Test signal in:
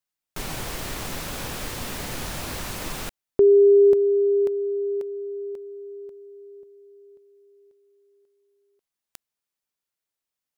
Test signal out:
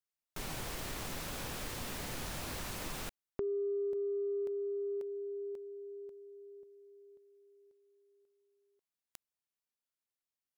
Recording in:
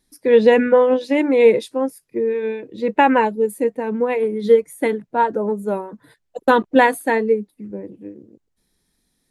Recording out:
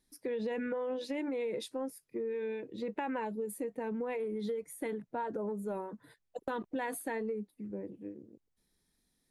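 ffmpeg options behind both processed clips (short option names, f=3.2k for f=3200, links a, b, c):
-af "acompressor=threshold=-26dB:ratio=10:attack=12:release=35:knee=6:detection=rms,volume=-8.5dB"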